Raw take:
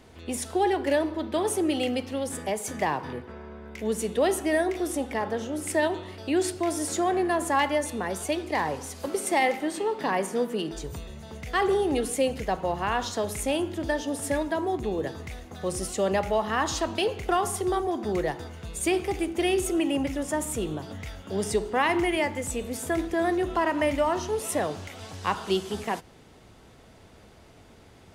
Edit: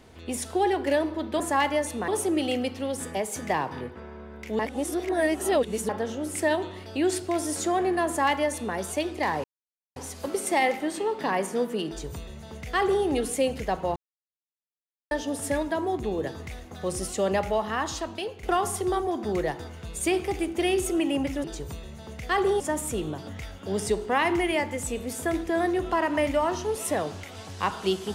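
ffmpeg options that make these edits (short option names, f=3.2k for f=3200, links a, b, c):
-filter_complex "[0:a]asplit=11[a][b][c][d][e][f][g][h][i][j][k];[a]atrim=end=1.402[l];[b]atrim=start=7.388:end=8.072[m];[c]atrim=start=1.398:end=3.912[n];[d]atrim=start=3.908:end=5.212,asetpts=PTS-STARTPTS,areverse[o];[e]atrim=start=5.208:end=8.76,asetpts=PTS-STARTPTS,afade=t=out:st=3.548:d=0.004:c=hsin,apad=pad_dur=0.52[p];[f]atrim=start=8.76:end=12.76,asetpts=PTS-STARTPTS,afade=t=in:d=0.004:c=hsin,afade=t=out:st=3.996:d=0.004:c=hsin[q];[g]atrim=start=12.76:end=13.91,asetpts=PTS-STARTPTS,volume=0[r];[h]atrim=start=13.91:end=17.23,asetpts=PTS-STARTPTS,afade=t=in:d=0.004:c=hsin,afade=t=out:st=2.33:d=0.99:silence=0.316228[s];[i]atrim=start=17.23:end=20.242,asetpts=PTS-STARTPTS,afade=t=in:d=0.004:c=hsin:silence=0.316228[t];[j]atrim=start=10.678:end=11.842[u];[k]atrim=start=20.238[v];[l][m]acrossfade=d=0.004:c1=hsin:c2=hsin[w];[w][n]acrossfade=d=0.004:c1=hsin:c2=hsin[x];[x][o]acrossfade=d=0.004:c1=hsin:c2=hsin[y];[p][q][r][s][t]concat=n=5:v=0:a=1[z];[y][z]acrossfade=d=0.004:c1=hsin:c2=hsin[aa];[aa][u]acrossfade=d=0.004:c1=hsin:c2=hsin[ab];[ab][v]acrossfade=d=0.004:c1=hsin:c2=hsin"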